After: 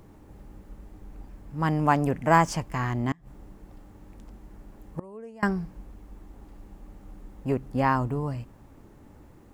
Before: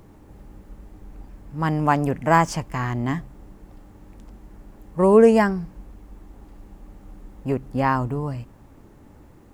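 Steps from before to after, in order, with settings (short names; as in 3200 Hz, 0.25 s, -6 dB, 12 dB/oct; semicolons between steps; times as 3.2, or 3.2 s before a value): 3.11–5.43 flipped gate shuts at -15 dBFS, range -27 dB; gain -2.5 dB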